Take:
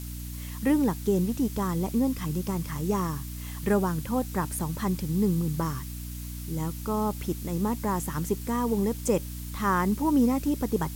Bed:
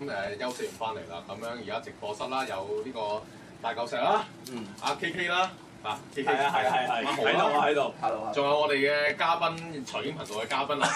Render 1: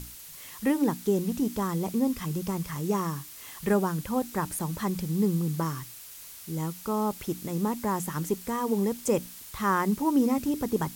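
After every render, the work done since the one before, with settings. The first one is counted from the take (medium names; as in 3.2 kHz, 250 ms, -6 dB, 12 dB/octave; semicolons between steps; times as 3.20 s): hum notches 60/120/180/240/300 Hz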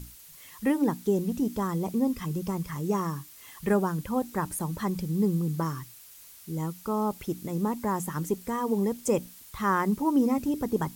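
noise reduction 6 dB, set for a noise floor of -45 dBFS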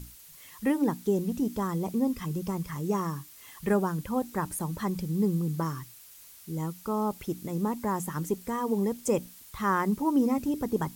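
trim -1 dB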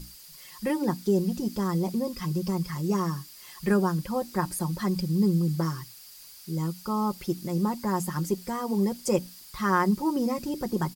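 peaking EQ 4.8 kHz +13.5 dB 0.25 oct; comb 5.6 ms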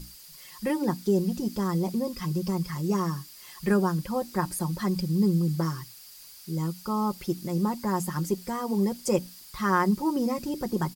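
no audible change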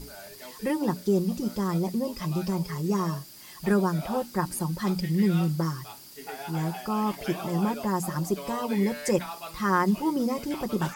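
add bed -13 dB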